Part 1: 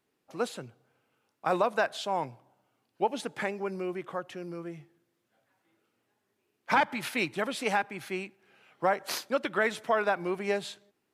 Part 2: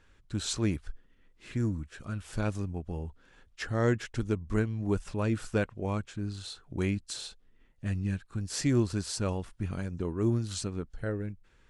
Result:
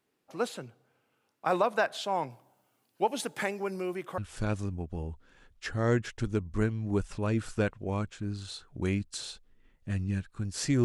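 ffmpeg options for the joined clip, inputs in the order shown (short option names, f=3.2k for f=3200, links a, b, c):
-filter_complex "[0:a]asettb=1/sr,asplit=3[a][b][c];[a]atrim=end=2.304[d];[b]atrim=start=2.3:end=4.18,asetpts=PTS-STARTPTS,afade=t=in:d=0.004:c=qsin,afade=t=out:st=1.876:d=0.004:c=qsin,highshelf=f=6.7k:g=12[e];[c]atrim=start=4.176[f];[d][e]acrossfade=d=0.004:c1=hsin:c2=qsin[g];[g][f]acrossfade=d=0.004:c1=qsin:c2=hsin,apad=whole_dur=10.84,atrim=end=10.84,atrim=end=4.182[h];[1:a]atrim=start=2.138:end=8.8[i];[h][i]acrossfade=d=0.004:c1=hsin:c2=hsin"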